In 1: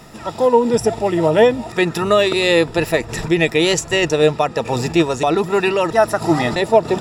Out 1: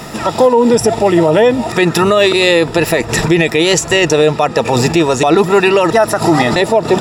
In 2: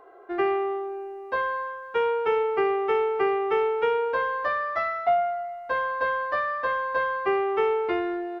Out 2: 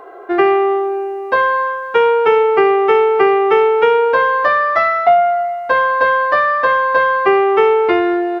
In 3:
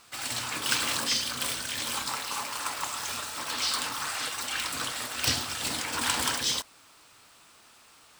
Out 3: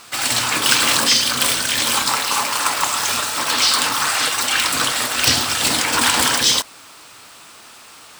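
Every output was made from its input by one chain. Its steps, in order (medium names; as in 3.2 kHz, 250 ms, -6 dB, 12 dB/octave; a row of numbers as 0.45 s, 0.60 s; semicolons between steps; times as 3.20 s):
in parallel at +2 dB: compression, threshold -26 dBFS; on the sum: bass shelf 74 Hz -9 dB; loudness maximiser +7.5 dB; peak normalisation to -1.5 dBFS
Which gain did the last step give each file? -0.5 dB, 0.0 dB, -0.5 dB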